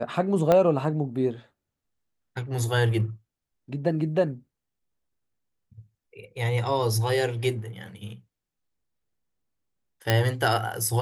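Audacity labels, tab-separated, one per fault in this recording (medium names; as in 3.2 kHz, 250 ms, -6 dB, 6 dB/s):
0.520000	0.520000	pop -9 dBFS
10.100000	10.100000	pop -6 dBFS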